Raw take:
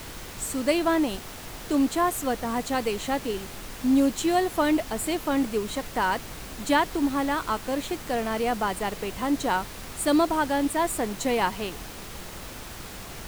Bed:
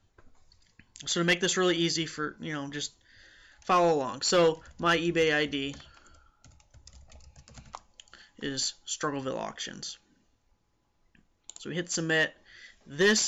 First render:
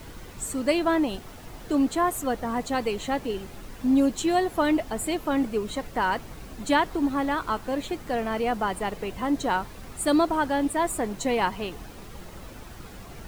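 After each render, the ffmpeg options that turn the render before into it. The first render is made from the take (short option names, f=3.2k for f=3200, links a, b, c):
-af "afftdn=nr=9:nf=-40"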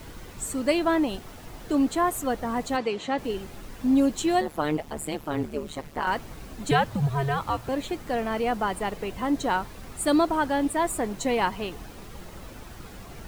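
-filter_complex "[0:a]asplit=3[a][b][c];[a]afade=t=out:st=2.76:d=0.02[d];[b]highpass=160,lowpass=5.6k,afade=t=in:st=2.76:d=0.02,afade=t=out:st=3.17:d=0.02[e];[c]afade=t=in:st=3.17:d=0.02[f];[d][e][f]amix=inputs=3:normalize=0,asettb=1/sr,asplit=3[g][h][i];[g]atrim=end=4.414[j];[h]atrim=start=4.41:end=6.07,asetpts=PTS-STARTPTS,afade=t=in:d=0.004:c=qsin,afade=t=out:st=1.656:d=0.004:c=qsin,tremolo=f=150:d=1[k];[i]atrim=start=6.066[l];[j][k]acrossfade=d=0.004:c1=hsin:c2=qsin[m];[m][l]acrossfade=d=0.004:c1=qsin:c2=hsin,asettb=1/sr,asplit=3[n][o][p];[n]atrim=end=6.714[q];[o]atrim=start=6.71:end=7.69,asetpts=PTS-STARTPTS,afade=t=in:d=0.004:c=qsin,afade=t=out:st=0.976:d=0.004:c=qsin,afreqshift=-140[r];[p]atrim=start=7.686[s];[q][r]acrossfade=d=0.004:c1=hsin:c2=qsin[t];[t][s]acrossfade=d=0.004:c1=qsin:c2=hsin"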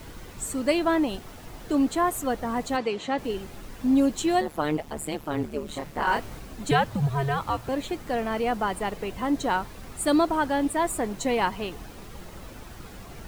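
-filter_complex "[0:a]asettb=1/sr,asplit=3[a][b][c];[a]atrim=end=5.664[d];[b]atrim=start=5.66:end=6.4,asetpts=PTS-STARTPTS,afade=t=in:d=0.004:c=qsin,afade=t=out:st=0.736:d=0.004:c=qsin,asplit=2[e][f];[f]adelay=29,volume=-2.5dB[g];[e][g]amix=inputs=2:normalize=0,atrim=end_sample=32634[h];[c]atrim=start=6.396[i];[d][h]acrossfade=d=0.004:c1=hsin:c2=qsin[j];[j][i]acrossfade=d=0.004:c1=qsin:c2=hsin"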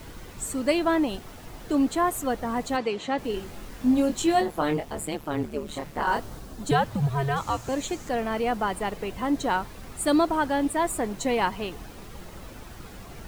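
-filter_complex "[0:a]asettb=1/sr,asplit=3[a][b][c];[a]atrim=end=3.314[d];[b]atrim=start=3.31:end=5.06,asetpts=PTS-STARTPTS,afade=t=in:d=0.004:c=qsin,afade=t=out:st=1.746:d=0.004:c=qsin,asplit=2[e][f];[f]adelay=24,volume=-5dB[g];[e][g]amix=inputs=2:normalize=0,atrim=end_sample=77175[h];[c]atrim=start=5.056[i];[d][h]acrossfade=d=0.004:c1=hsin:c2=qsin[j];[j][i]acrossfade=d=0.004:c1=qsin:c2=hsin,asettb=1/sr,asplit=3[k][l][m];[k]atrim=end=6.024[n];[l]atrim=start=6.02:end=6.84,asetpts=PTS-STARTPTS,afade=t=in:d=0.004:c=qsin,afade=t=out:st=0.816:d=0.004:c=qsin,equalizer=f=2.3k:w=2:g=-7.5[o];[m]atrim=start=6.836[p];[n][o]acrossfade=d=0.004:c1=hsin:c2=qsin[q];[q][p]acrossfade=d=0.004:c1=qsin:c2=hsin,asettb=1/sr,asplit=3[r][s][t];[r]atrim=end=7.364[u];[s]atrim=start=7.36:end=8.09,asetpts=PTS-STARTPTS,afade=t=in:d=0.004:c=qsin,afade=t=out:st=0.726:d=0.004:c=qsin,equalizer=f=6.8k:w=1.9:g=12[v];[t]atrim=start=8.086[w];[u][v]acrossfade=d=0.004:c1=hsin:c2=qsin[x];[x][w]acrossfade=d=0.004:c1=qsin:c2=hsin"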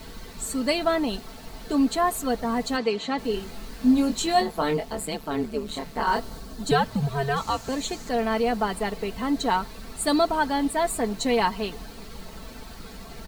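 -af "equalizer=f=4.3k:t=o:w=0.33:g=8,aecho=1:1:4.5:0.54"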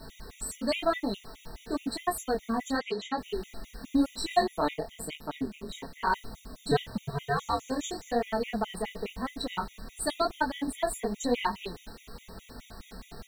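-af "flanger=delay=19.5:depth=7.9:speed=0.96,afftfilt=real='re*gt(sin(2*PI*4.8*pts/sr)*(1-2*mod(floor(b*sr/1024/1900),2)),0)':imag='im*gt(sin(2*PI*4.8*pts/sr)*(1-2*mod(floor(b*sr/1024/1900),2)),0)':win_size=1024:overlap=0.75"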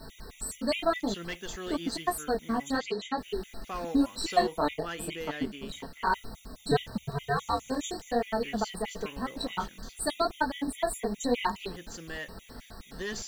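-filter_complex "[1:a]volume=-13.5dB[a];[0:a][a]amix=inputs=2:normalize=0"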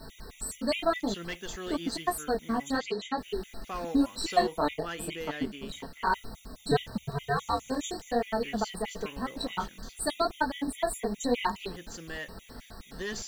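-af anull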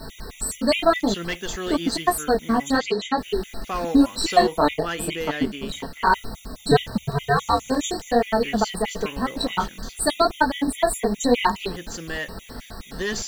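-af "volume=9dB,alimiter=limit=-3dB:level=0:latency=1"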